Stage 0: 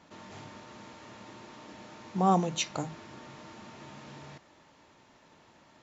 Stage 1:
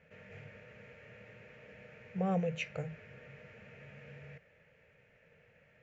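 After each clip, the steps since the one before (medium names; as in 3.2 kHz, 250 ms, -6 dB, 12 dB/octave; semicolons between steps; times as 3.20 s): FFT filter 160 Hz 0 dB, 330 Hz -22 dB, 470 Hz +5 dB, 1 kHz -22 dB, 1.6 kHz -1 dB, 2.5 kHz +2 dB, 3.7 kHz -20 dB; trim -1 dB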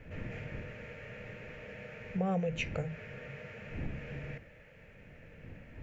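wind noise 160 Hz -53 dBFS; compression 2:1, threshold -42 dBFS, peak gain reduction 8 dB; trim +7.5 dB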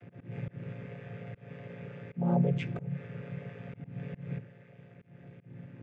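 vocoder on a held chord minor triad, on A#2; slow attack 191 ms; trim +7 dB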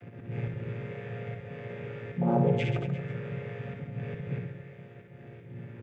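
reverse bouncing-ball echo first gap 60 ms, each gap 1.25×, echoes 5; trim +4 dB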